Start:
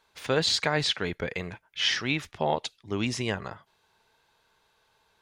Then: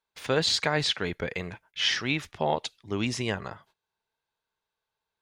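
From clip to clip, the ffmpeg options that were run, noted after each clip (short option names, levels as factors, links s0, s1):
-af "agate=range=0.112:threshold=0.00126:ratio=16:detection=peak"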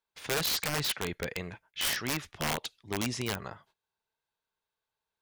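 -af "aeval=exprs='(mod(9.44*val(0)+1,2)-1)/9.44':c=same,volume=0.668"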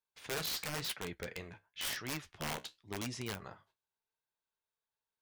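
-af "flanger=delay=6.4:depth=8.8:regen=-60:speed=0.96:shape=sinusoidal,volume=0.668"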